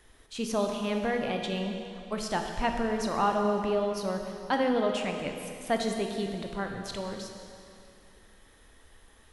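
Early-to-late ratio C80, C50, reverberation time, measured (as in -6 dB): 5.0 dB, 4.0 dB, 2.6 s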